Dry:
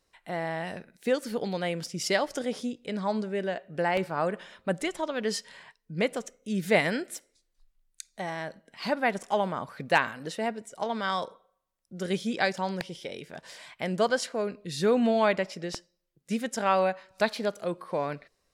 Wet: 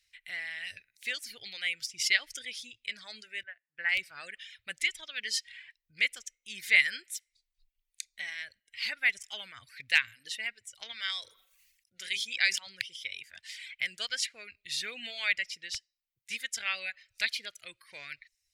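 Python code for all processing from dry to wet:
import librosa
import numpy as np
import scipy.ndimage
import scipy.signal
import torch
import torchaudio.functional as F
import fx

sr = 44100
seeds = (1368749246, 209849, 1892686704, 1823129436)

y = fx.chain(x, sr, fx.lowpass_res(hz=1700.0, q=1.9),
    fx.upward_expand(threshold_db=-36.0, expansion=2.5), at=(3.43, 3.89))
y = fx.chain(y, sr, fx.low_shelf(hz=230.0, db=-8.0),
    fx.hum_notches(base_hz=50, count=8),
    fx.sustainer(db_per_s=66.0), at=(10.92, 12.67))
y = fx.curve_eq(y, sr, hz=(110.0, 160.0, 1000.0, 2100.0, 7900.0), db=(0, -22, -24, 8, 1))
y = fx.dereverb_blind(y, sr, rt60_s=0.75)
y = fx.low_shelf(y, sr, hz=350.0, db=-8.0)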